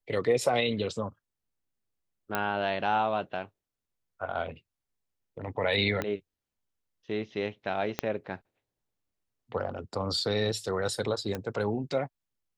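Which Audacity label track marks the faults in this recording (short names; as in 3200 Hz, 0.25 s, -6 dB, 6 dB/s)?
2.350000	2.350000	pop -13 dBFS
6.020000	6.020000	pop -16 dBFS
7.990000	7.990000	pop -12 dBFS
11.350000	11.350000	pop -19 dBFS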